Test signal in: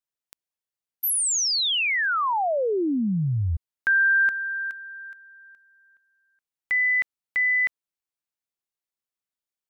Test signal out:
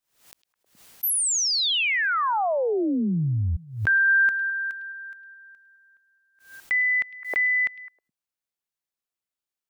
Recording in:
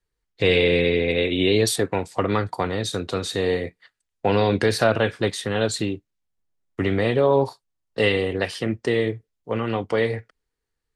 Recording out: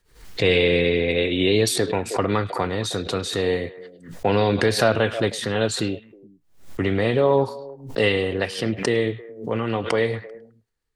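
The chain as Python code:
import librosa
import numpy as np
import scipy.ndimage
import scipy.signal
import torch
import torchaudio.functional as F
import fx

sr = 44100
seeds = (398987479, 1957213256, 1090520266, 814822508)

y = fx.echo_stepped(x, sr, ms=105, hz=3500.0, octaves=-1.4, feedback_pct=70, wet_db=-11.5)
y = fx.pre_swell(y, sr, db_per_s=120.0)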